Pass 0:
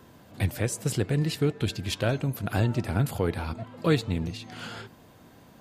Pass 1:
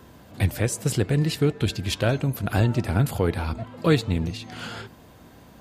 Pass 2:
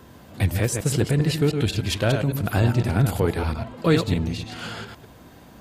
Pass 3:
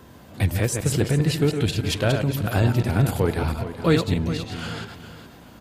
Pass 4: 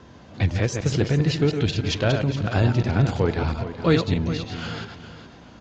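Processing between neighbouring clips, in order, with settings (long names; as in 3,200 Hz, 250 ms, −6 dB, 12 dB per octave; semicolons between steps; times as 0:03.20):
parametric band 61 Hz +10 dB 0.39 octaves; level +3.5 dB
delay that plays each chunk backwards 101 ms, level −6 dB; in parallel at −8.5 dB: soft clipping −16.5 dBFS, distortion −14 dB; on the sum: level −1.5 dB
repeating echo 416 ms, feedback 30%, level −12.5 dB
Butterworth low-pass 6,800 Hz 72 dB per octave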